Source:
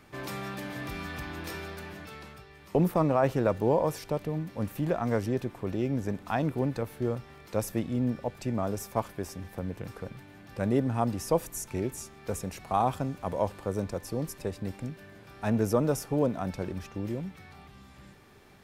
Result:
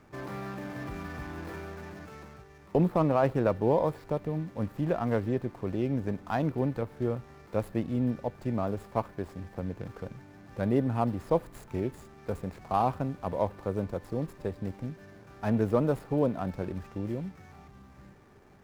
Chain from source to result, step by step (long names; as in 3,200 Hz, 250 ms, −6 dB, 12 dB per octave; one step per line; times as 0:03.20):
running median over 15 samples
dynamic equaliser 6,400 Hz, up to −5 dB, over −57 dBFS, Q 1.1